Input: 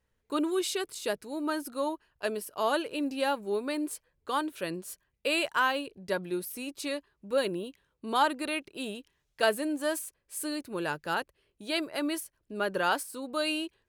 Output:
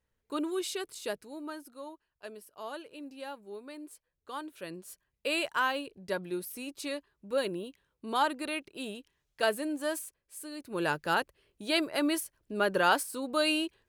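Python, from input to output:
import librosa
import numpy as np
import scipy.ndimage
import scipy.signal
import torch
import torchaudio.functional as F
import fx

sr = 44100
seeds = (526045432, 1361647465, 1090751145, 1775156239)

y = fx.gain(x, sr, db=fx.line((1.12, -4.0), (1.74, -13.0), (3.92, -13.0), (5.32, -2.5), (10.02, -2.5), (10.5, -9.5), (10.83, 2.5)))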